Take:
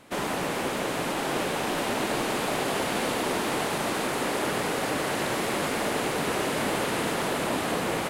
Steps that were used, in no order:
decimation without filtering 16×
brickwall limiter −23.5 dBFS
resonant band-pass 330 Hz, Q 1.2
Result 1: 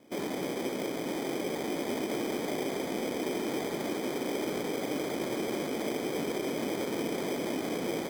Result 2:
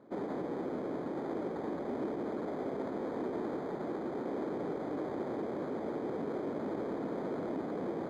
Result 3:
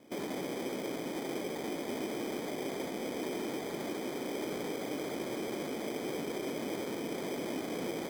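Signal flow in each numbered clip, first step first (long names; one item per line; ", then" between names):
resonant band-pass, then brickwall limiter, then decimation without filtering
brickwall limiter, then decimation without filtering, then resonant band-pass
brickwall limiter, then resonant band-pass, then decimation without filtering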